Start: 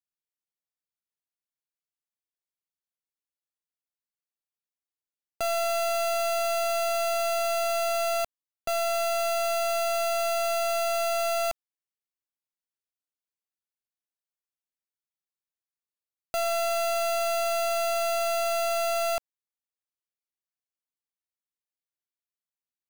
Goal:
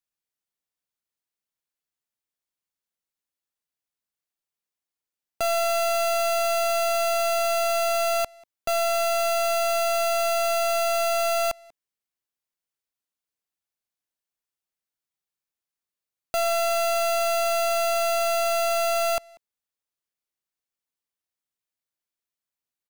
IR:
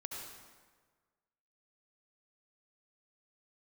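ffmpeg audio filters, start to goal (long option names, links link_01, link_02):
-filter_complex "[0:a]asplit=2[link_01][link_02];[link_02]adelay=190,highpass=300,lowpass=3400,asoftclip=type=hard:threshold=-35dB,volume=-17dB[link_03];[link_01][link_03]amix=inputs=2:normalize=0,volume=3.5dB"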